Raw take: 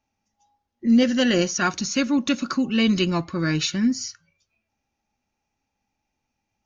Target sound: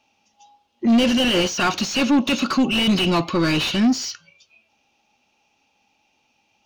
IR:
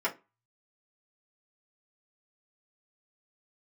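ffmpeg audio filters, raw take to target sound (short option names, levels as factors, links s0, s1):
-filter_complex "[0:a]highshelf=f=2300:t=q:w=3:g=6.5,acrossover=split=3100[s0][s1];[s1]acompressor=threshold=0.0631:ratio=4:attack=1:release=60[s2];[s0][s2]amix=inputs=2:normalize=0,asplit=2[s3][s4];[s4]highpass=f=720:p=1,volume=22.4,asoftclip=type=tanh:threshold=0.562[s5];[s3][s5]amix=inputs=2:normalize=0,lowpass=f=1200:p=1,volume=0.501,volume=0.75"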